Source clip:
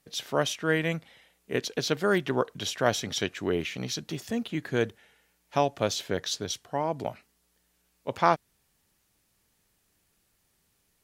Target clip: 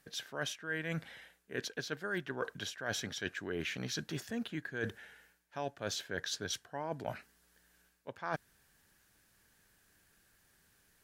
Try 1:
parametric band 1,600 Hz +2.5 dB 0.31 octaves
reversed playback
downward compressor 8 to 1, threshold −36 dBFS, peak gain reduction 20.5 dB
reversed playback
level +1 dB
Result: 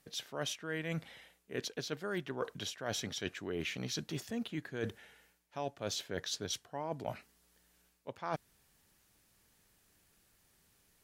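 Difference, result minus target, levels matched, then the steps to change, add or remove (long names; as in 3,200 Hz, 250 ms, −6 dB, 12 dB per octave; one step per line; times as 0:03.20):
2,000 Hz band −4.5 dB
change: parametric band 1,600 Hz +12.5 dB 0.31 octaves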